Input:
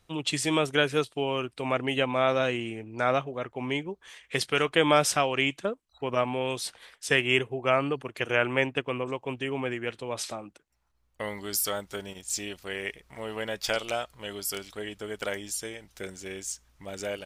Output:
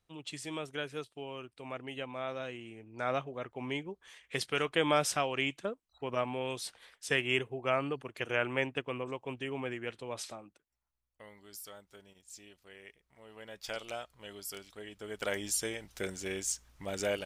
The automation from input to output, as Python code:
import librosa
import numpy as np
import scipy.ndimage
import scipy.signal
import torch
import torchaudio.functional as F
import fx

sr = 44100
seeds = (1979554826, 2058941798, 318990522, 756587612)

y = fx.gain(x, sr, db=fx.line((2.61, -14.0), (3.21, -6.5), (10.12, -6.5), (11.25, -19.0), (13.22, -19.0), (13.81, -10.0), (14.89, -10.0), (15.46, 1.0)))